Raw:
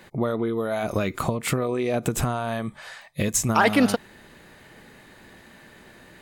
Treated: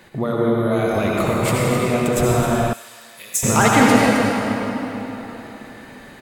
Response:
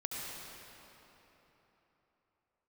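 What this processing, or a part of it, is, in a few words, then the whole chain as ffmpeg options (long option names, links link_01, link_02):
cave: -filter_complex "[0:a]aecho=1:1:262:0.335[link_01];[1:a]atrim=start_sample=2205[link_02];[link_01][link_02]afir=irnorm=-1:irlink=0,asettb=1/sr,asplit=3[link_03][link_04][link_05];[link_03]atrim=end=2.734[link_06];[link_04]atrim=start=2.73:end=3.43,asetpts=PTS-STARTPTS,afade=type=in:duration=0.004:curve=qsin,afade=type=out:start_time=0.696:duration=0.004:curve=qsin,aderivative[link_07];[link_05]atrim=start=3.426[link_08];[link_06][link_07]acrossfade=duration=0.004:curve1=hsin:curve2=qsin[link_09];[link_09][link_08]acrossfade=duration=0.004:curve1=qsin:curve2=hsin,volume=4.5dB"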